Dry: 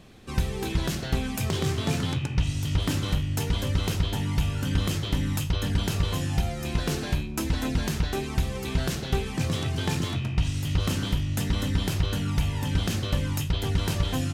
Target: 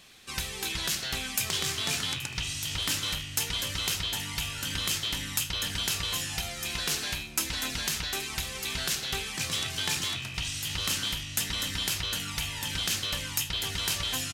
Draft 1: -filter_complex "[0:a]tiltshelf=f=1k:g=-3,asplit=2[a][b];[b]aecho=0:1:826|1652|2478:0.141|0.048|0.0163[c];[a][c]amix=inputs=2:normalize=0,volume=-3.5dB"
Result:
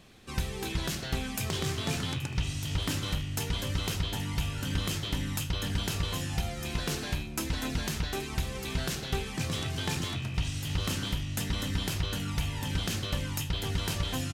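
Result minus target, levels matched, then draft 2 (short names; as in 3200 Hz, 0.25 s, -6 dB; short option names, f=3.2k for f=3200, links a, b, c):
1000 Hz band +3.0 dB
-filter_complex "[0:a]tiltshelf=f=1k:g=-11,asplit=2[a][b];[b]aecho=0:1:826|1652|2478:0.141|0.048|0.0163[c];[a][c]amix=inputs=2:normalize=0,volume=-3.5dB"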